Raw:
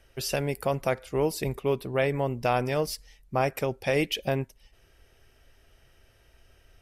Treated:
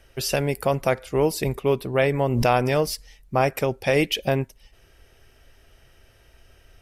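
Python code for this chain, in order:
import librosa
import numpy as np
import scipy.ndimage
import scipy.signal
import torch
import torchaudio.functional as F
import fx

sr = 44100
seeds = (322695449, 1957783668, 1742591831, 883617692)

y = fx.pre_swell(x, sr, db_per_s=35.0, at=(2.21, 2.9))
y = y * 10.0 ** (5.0 / 20.0)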